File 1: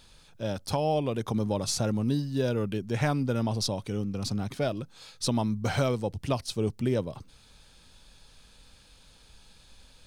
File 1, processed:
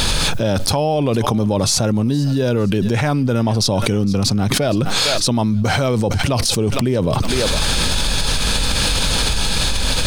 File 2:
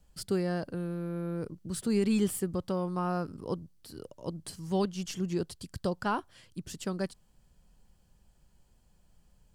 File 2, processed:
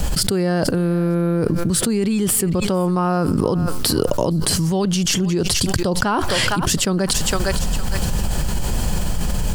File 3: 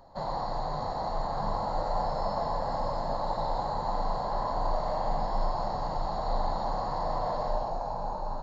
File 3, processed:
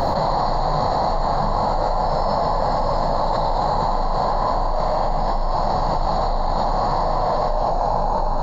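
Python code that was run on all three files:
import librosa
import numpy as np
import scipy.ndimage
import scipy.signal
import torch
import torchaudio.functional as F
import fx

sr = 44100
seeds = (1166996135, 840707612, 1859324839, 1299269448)

y = fx.rider(x, sr, range_db=10, speed_s=2.0)
y = fx.echo_thinned(y, sr, ms=459, feedback_pct=27, hz=1000.0, wet_db=-20.0)
y = fx.env_flatten(y, sr, amount_pct=100)
y = y * 10.0 ** (5.0 / 20.0)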